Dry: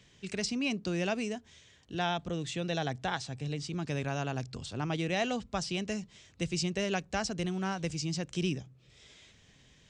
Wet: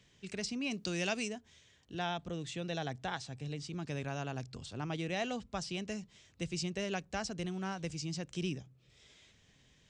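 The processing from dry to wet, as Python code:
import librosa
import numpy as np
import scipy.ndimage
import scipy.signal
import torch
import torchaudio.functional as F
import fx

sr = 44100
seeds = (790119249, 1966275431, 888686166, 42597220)

y = fx.high_shelf(x, sr, hz=2300.0, db=11.0, at=(0.71, 1.27), fade=0.02)
y = y * 10.0 ** (-5.0 / 20.0)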